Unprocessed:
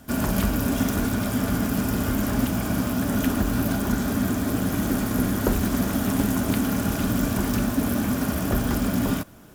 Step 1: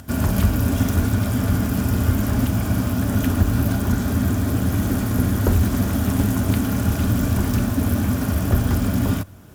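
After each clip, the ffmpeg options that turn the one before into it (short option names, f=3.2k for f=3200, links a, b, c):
-af "equalizer=f=89:t=o:w=0.85:g=14,acompressor=mode=upward:threshold=-37dB:ratio=2.5"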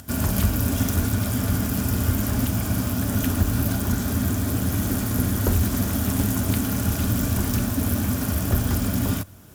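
-af "highshelf=f=3.6k:g=8,volume=-3.5dB"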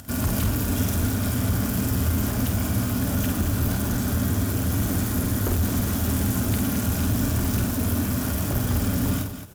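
-filter_complex "[0:a]asoftclip=type=tanh:threshold=-18.5dB,asplit=2[a][b];[b]aecho=0:1:49.56|218.7:0.501|0.355[c];[a][c]amix=inputs=2:normalize=0"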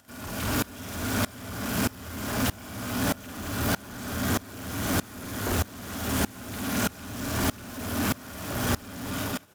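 -filter_complex "[0:a]asplit=2[a][b];[b]highpass=f=720:p=1,volume=22dB,asoftclip=type=tanh:threshold=-14dB[c];[a][c]amix=inputs=2:normalize=0,lowpass=f=4.1k:p=1,volume=-6dB,aeval=exprs='val(0)*pow(10,-24*if(lt(mod(-1.6*n/s,1),2*abs(-1.6)/1000),1-mod(-1.6*n/s,1)/(2*abs(-1.6)/1000),(mod(-1.6*n/s,1)-2*abs(-1.6)/1000)/(1-2*abs(-1.6)/1000))/20)':c=same"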